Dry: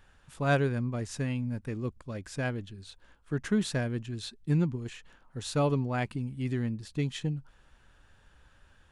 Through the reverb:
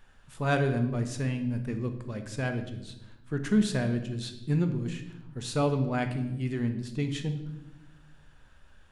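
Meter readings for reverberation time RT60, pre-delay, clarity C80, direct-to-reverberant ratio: 0.90 s, 3 ms, 12.0 dB, 6.0 dB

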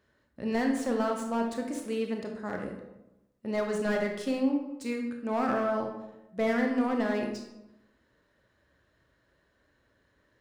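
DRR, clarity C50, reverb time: 2.0 dB, 4.5 dB, 0.95 s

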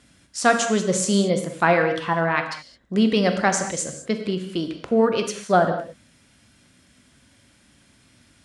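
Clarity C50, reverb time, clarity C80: 7.5 dB, non-exponential decay, 9.5 dB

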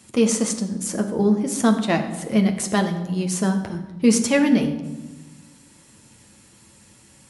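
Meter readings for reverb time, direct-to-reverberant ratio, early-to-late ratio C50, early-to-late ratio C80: 1.2 s, 4.0 dB, 9.5 dB, 11.0 dB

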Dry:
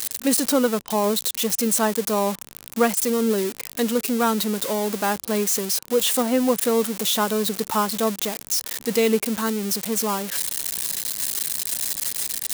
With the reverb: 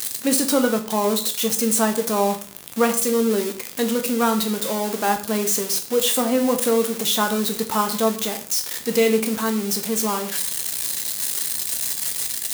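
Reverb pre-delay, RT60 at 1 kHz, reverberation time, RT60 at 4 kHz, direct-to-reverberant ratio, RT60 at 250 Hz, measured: 6 ms, 0.45 s, 0.45 s, 0.40 s, 5.0 dB, 0.40 s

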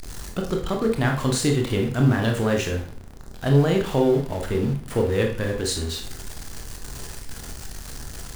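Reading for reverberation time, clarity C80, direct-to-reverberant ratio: 0.50 s, 11.5 dB, 1.5 dB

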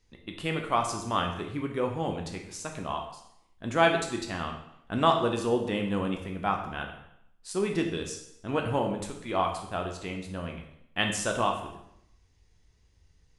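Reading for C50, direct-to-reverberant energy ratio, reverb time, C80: 6.5 dB, 2.0 dB, 0.75 s, 9.5 dB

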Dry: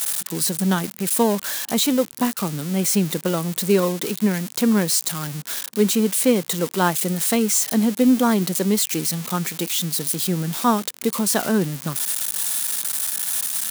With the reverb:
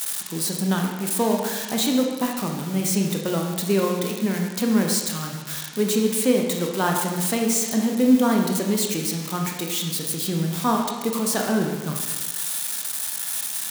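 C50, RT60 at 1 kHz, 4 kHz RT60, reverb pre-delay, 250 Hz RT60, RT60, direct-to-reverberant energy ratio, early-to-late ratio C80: 3.5 dB, 1.4 s, 1.2 s, 21 ms, 1.3 s, 1.4 s, 1.0 dB, 5.5 dB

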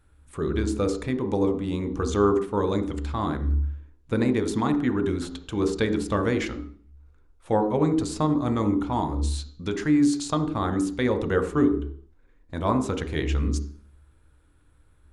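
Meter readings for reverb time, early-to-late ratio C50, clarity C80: 0.50 s, 10.0 dB, 13.0 dB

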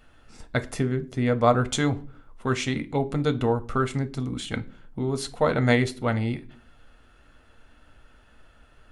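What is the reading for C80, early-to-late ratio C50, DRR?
25.0 dB, 19.0 dB, 9.0 dB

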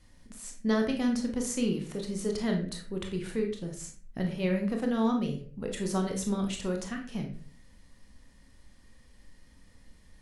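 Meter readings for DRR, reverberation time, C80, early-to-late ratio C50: 2.0 dB, 0.45 s, 12.0 dB, 7.0 dB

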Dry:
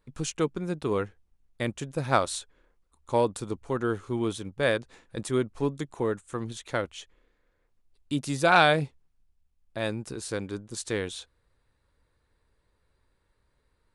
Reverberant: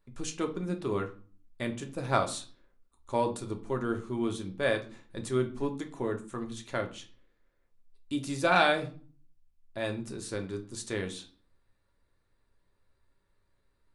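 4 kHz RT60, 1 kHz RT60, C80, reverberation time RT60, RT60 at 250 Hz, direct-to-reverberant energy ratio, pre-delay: 0.35 s, 0.40 s, 19.0 dB, 0.40 s, 0.60 s, 3.5 dB, 3 ms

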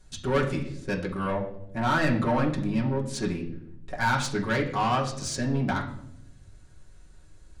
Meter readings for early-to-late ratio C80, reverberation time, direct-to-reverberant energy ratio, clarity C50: 12.5 dB, 0.80 s, −4.0 dB, 9.5 dB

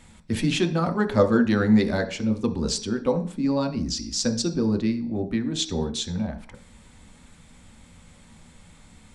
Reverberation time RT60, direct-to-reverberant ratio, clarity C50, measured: 0.45 s, 4.0 dB, 12.5 dB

